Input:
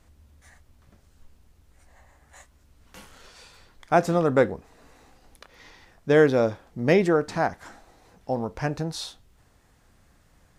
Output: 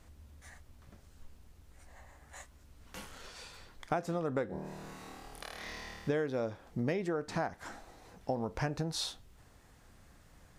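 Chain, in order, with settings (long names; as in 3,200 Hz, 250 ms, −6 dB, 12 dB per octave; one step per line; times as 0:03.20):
downward compressor 12 to 1, threshold −30 dBFS, peak gain reduction 17.5 dB
0:04.47–0:06.09: flutter between parallel walls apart 4.5 metres, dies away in 1.4 s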